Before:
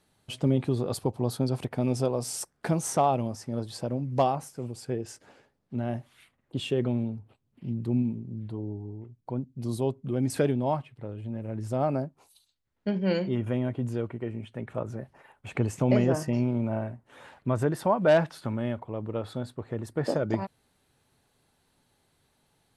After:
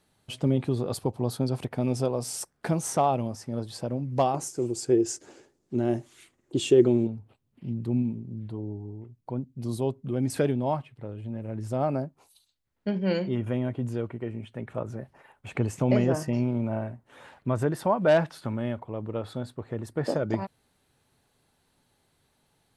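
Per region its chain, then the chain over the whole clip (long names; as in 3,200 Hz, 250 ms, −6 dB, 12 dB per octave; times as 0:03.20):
0:04.34–0:07.07: parametric band 6,900 Hz +14.5 dB 0.94 octaves + hollow resonant body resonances 350 Hz, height 15 dB, ringing for 40 ms
whole clip: no processing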